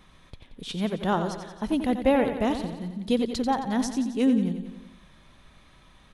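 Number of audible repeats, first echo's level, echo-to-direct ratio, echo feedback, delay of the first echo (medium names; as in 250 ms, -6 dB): 6, -9.0 dB, -7.0 dB, 59%, 89 ms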